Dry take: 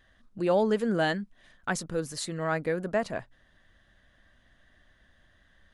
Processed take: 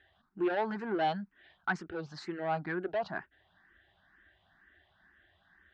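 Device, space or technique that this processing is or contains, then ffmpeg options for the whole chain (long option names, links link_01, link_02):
barber-pole phaser into a guitar amplifier: -filter_complex "[0:a]asplit=2[link_01][link_02];[link_02]afreqshift=2.1[link_03];[link_01][link_03]amix=inputs=2:normalize=1,asoftclip=type=tanh:threshold=-27dB,highpass=76,equalizer=frequency=120:width_type=q:width=4:gain=-9,equalizer=frequency=240:width_type=q:width=4:gain=-8,equalizer=frequency=370:width_type=q:width=4:gain=6,equalizer=frequency=520:width_type=q:width=4:gain=-10,equalizer=frequency=800:width_type=q:width=4:gain=8,equalizer=frequency=1500:width_type=q:width=4:gain=6,lowpass=frequency=4000:width=0.5412,lowpass=frequency=4000:width=1.3066"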